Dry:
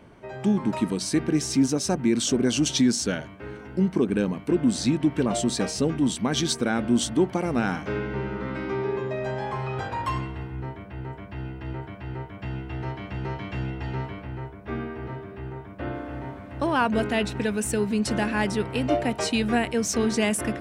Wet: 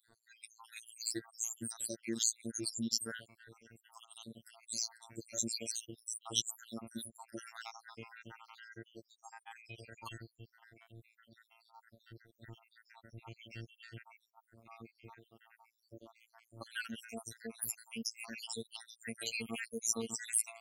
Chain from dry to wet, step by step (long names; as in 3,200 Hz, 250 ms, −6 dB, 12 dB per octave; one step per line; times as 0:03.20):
time-frequency cells dropped at random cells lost 81%
phases set to zero 114 Hz
first-order pre-emphasis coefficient 0.9
level +4.5 dB